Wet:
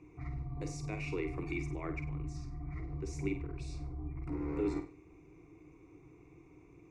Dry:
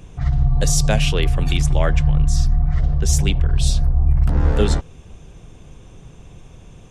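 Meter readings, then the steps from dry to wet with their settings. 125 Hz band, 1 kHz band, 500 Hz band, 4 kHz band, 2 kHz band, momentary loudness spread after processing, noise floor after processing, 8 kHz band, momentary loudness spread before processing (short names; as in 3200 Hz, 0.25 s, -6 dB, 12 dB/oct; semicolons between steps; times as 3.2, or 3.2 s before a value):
-22.5 dB, -18.0 dB, -15.0 dB, -29.5 dB, -16.0 dB, 22 LU, -60 dBFS, -29.0 dB, 3 LU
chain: LPF 9500 Hz; limiter -10.5 dBFS, peak gain reduction 7.5 dB; vowel filter u; fixed phaser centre 860 Hz, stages 6; flutter echo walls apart 8.4 m, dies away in 0.35 s; gain +8 dB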